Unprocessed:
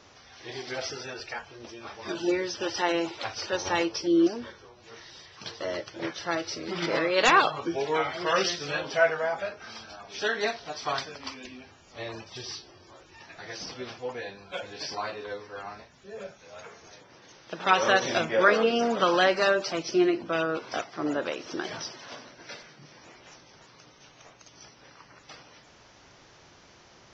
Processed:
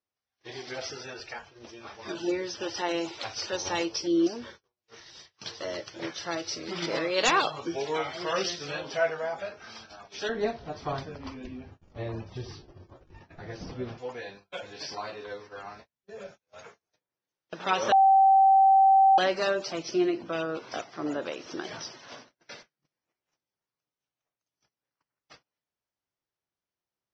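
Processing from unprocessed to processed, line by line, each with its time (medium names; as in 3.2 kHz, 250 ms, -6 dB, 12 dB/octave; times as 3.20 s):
2.91–8.26 s: treble shelf 4 kHz +6.5 dB
10.29–13.98 s: tilt EQ -4 dB/octave
17.92–19.18 s: bleep 775 Hz -11.5 dBFS
whole clip: gate -45 dBFS, range -37 dB; dynamic bell 1.6 kHz, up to -4 dB, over -36 dBFS, Q 0.98; trim -2.5 dB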